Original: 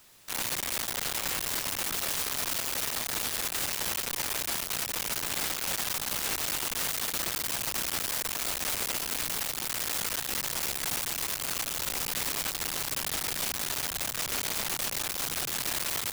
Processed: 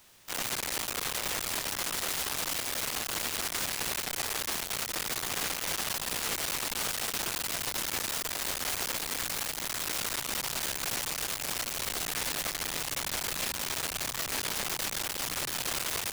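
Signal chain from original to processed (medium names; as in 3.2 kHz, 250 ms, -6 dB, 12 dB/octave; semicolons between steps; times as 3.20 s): formant shift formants -4 st; loudspeaker Doppler distortion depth 0.84 ms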